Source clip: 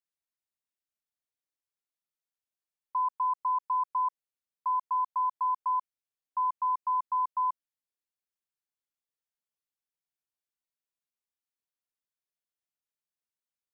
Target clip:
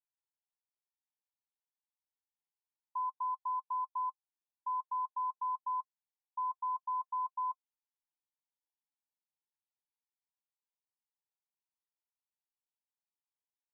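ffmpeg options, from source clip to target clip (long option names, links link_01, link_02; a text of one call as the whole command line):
ffmpeg -i in.wav -af "asuperpass=centerf=890:order=20:qfactor=3,alimiter=level_in=7dB:limit=-24dB:level=0:latency=1:release=11,volume=-7dB" out.wav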